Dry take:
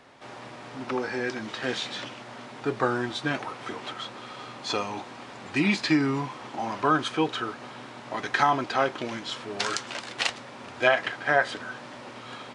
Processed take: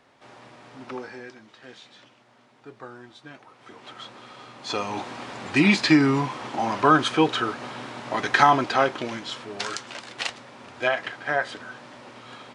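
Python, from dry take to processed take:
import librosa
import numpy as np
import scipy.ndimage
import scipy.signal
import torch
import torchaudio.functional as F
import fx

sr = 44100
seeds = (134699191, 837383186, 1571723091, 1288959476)

y = fx.gain(x, sr, db=fx.line((0.97, -5.5), (1.47, -16.0), (3.46, -16.0), (4.02, -4.0), (4.54, -4.0), (5.02, 5.5), (8.53, 5.5), (9.71, -2.5)))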